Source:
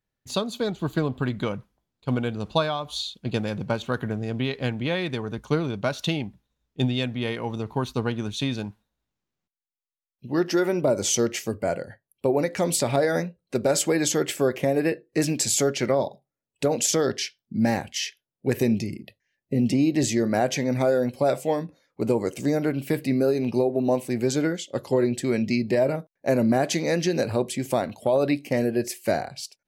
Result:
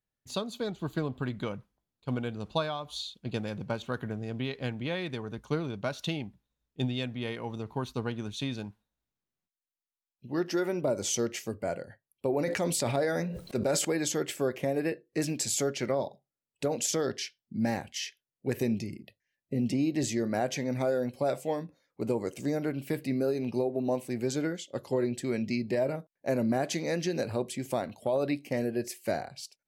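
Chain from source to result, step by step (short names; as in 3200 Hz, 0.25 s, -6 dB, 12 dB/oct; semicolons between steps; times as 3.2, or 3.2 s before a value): 12.3–13.85 sustainer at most 37 dB/s; gain -7 dB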